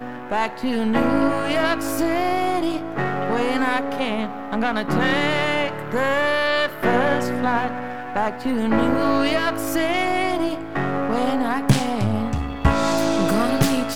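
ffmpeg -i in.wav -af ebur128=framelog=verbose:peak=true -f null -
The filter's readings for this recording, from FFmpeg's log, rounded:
Integrated loudness:
  I:         -21.4 LUFS
  Threshold: -31.4 LUFS
Loudness range:
  LRA:         1.5 LU
  Threshold: -41.5 LUFS
  LRA low:   -22.2 LUFS
  LRA high:  -20.8 LUFS
True peak:
  Peak:       -3.5 dBFS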